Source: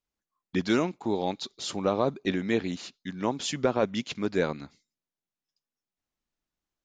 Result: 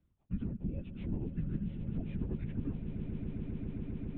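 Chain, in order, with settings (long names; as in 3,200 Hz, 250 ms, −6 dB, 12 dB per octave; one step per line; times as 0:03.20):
harmonic generator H 6 −45 dB, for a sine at −11.5 dBFS
downward compressor 2 to 1, threshold −28 dBFS, peak gain reduction 5.5 dB
low-shelf EQ 110 Hz +6 dB
formants moved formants −6 semitones
linear-prediction vocoder at 8 kHz whisper
drawn EQ curve 110 Hz 0 dB, 220 Hz +1 dB, 730 Hz −17 dB
time stretch by phase vocoder 0.61×
low-pass filter 2,900 Hz 12 dB per octave
on a send: echo that builds up and dies away 134 ms, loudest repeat 8, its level −14 dB
on the sum: multiband upward and downward compressor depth 70%
level −1.5 dB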